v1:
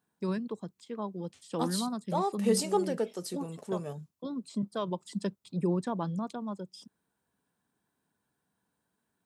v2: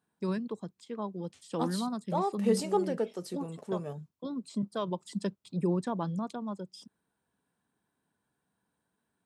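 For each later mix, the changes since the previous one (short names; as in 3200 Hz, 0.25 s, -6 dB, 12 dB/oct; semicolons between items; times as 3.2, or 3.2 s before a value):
second voice: add high shelf 3800 Hz -8 dB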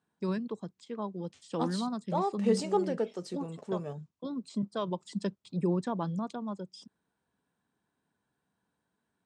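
master: add LPF 8100 Hz 24 dB/oct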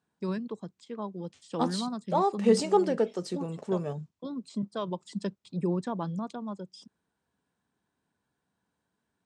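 second voice +5.0 dB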